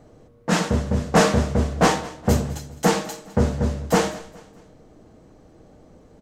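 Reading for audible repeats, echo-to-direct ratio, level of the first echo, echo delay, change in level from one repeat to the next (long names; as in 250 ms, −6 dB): 3, −18.5 dB, −19.0 dB, 208 ms, −8.0 dB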